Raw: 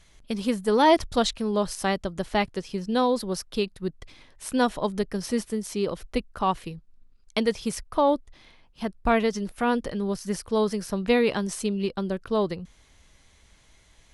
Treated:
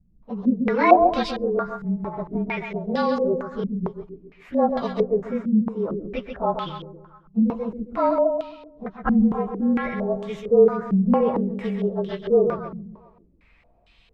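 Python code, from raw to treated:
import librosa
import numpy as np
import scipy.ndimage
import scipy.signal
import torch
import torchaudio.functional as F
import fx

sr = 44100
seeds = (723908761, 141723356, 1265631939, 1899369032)

y = fx.partial_stretch(x, sr, pct=108)
y = fx.comb_fb(y, sr, f0_hz=78.0, decay_s=0.21, harmonics='all', damping=0.0, mix_pct=60, at=(1.33, 2.08))
y = fx.echo_feedback(y, sr, ms=135, feedback_pct=48, wet_db=-6)
y = fx.filter_held_lowpass(y, sr, hz=4.4, low_hz=210.0, high_hz=3200.0)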